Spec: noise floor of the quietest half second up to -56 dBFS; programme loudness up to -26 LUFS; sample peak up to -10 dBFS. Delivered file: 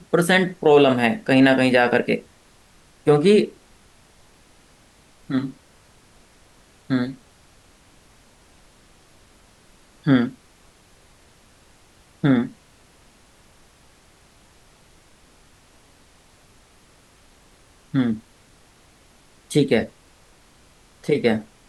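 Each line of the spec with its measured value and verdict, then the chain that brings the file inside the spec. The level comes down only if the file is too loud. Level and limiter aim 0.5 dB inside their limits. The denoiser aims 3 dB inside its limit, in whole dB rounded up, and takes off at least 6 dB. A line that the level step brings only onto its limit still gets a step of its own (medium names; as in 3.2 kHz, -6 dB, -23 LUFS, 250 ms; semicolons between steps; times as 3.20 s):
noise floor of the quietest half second -54 dBFS: fail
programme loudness -20.0 LUFS: fail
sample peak -4.5 dBFS: fail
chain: trim -6.5 dB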